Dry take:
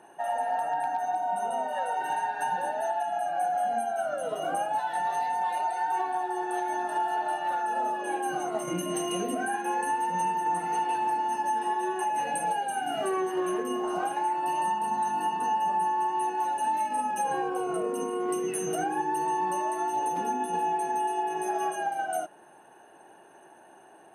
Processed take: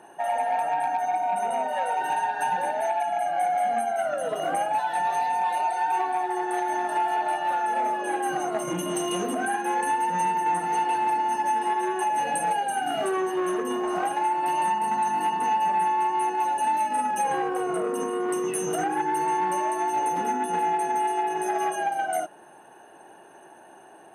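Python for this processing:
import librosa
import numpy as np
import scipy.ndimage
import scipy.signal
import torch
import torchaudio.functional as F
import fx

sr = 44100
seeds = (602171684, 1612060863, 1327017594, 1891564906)

y = fx.transformer_sat(x, sr, knee_hz=690.0)
y = y * librosa.db_to_amplitude(4.0)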